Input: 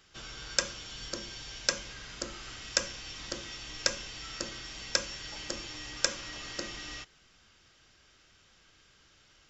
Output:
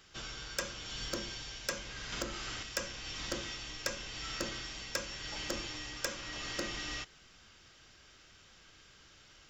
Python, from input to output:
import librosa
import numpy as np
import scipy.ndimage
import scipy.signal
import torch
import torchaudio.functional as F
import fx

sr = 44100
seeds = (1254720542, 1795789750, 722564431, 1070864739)

y = fx.dynamic_eq(x, sr, hz=5900.0, q=0.87, threshold_db=-44.0, ratio=4.0, max_db=-3)
y = fx.rider(y, sr, range_db=3, speed_s=0.5)
y = 10.0 ** (-24.0 / 20.0) * np.tanh(y / 10.0 ** (-24.0 / 20.0))
y = fx.band_squash(y, sr, depth_pct=70, at=(2.12, 2.63))